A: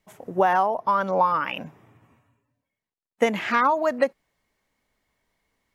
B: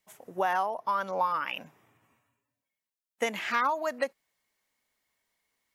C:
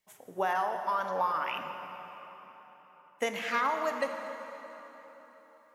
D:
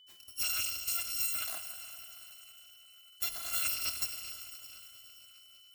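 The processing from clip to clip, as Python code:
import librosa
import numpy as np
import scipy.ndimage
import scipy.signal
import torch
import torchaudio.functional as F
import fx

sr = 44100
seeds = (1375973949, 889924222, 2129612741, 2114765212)

y1 = fx.tilt_eq(x, sr, slope=2.5)
y1 = F.gain(torch.from_numpy(y1), -7.0).numpy()
y2 = fx.rev_plate(y1, sr, seeds[0], rt60_s=4.2, hf_ratio=0.75, predelay_ms=0, drr_db=5.0)
y2 = F.gain(torch.from_numpy(y2), -2.5).numpy()
y3 = fx.bit_reversed(y2, sr, seeds[1], block=256)
y3 = y3 + 10.0 ** (-53.0 / 20.0) * np.sin(2.0 * np.pi * 3000.0 * np.arange(len(y3)) / sr)
y3 = F.gain(torch.from_numpy(y3), -4.0).numpy()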